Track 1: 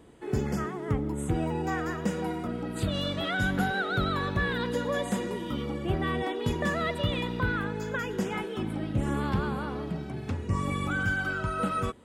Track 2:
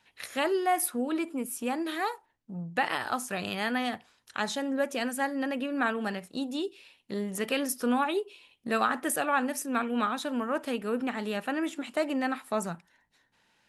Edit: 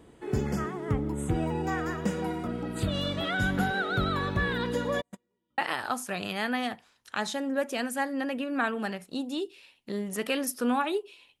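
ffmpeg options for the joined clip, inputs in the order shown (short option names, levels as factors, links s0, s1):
-filter_complex "[0:a]asplit=3[s0][s1][s2];[s0]afade=t=out:st=5:d=0.02[s3];[s1]agate=range=0.00447:threshold=0.0631:ratio=16:release=100:detection=peak,afade=t=in:st=5:d=0.02,afade=t=out:st=5.58:d=0.02[s4];[s2]afade=t=in:st=5.58:d=0.02[s5];[s3][s4][s5]amix=inputs=3:normalize=0,apad=whole_dur=11.4,atrim=end=11.4,atrim=end=5.582[s6];[1:a]atrim=start=2.798:end=8.62[s7];[s6][s7]acrossfade=d=0.004:c1=hsin:c2=hsin"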